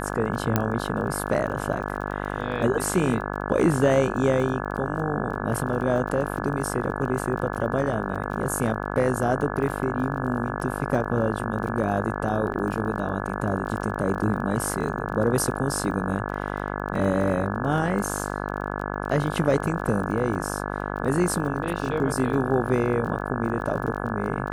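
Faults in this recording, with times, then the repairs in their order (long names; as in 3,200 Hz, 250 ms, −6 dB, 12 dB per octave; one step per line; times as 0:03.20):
mains buzz 50 Hz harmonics 34 −30 dBFS
surface crackle 27 per second −33 dBFS
0:00.56: click −6 dBFS
0:12.54–0:12.55: drop-out 7.1 ms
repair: click removal
hum removal 50 Hz, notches 34
repair the gap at 0:12.54, 7.1 ms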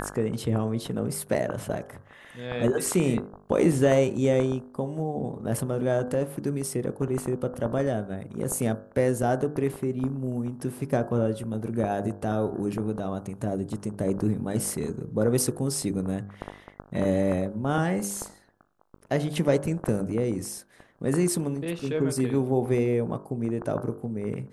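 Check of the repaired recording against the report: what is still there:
none of them is left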